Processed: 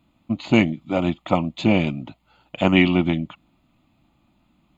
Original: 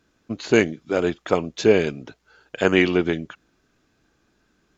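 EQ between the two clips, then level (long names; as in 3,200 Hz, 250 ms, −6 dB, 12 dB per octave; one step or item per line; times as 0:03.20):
parametric band 270 Hz +7.5 dB 2.8 octaves
notch filter 1,100 Hz, Q 26
phaser with its sweep stopped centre 1,600 Hz, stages 6
+2.5 dB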